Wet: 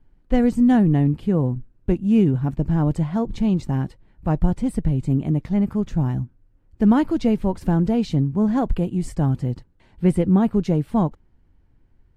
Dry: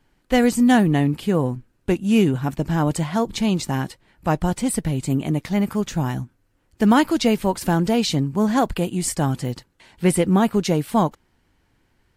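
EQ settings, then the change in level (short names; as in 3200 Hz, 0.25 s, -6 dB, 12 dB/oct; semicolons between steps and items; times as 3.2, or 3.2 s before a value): tilt -3.5 dB/oct; -7.0 dB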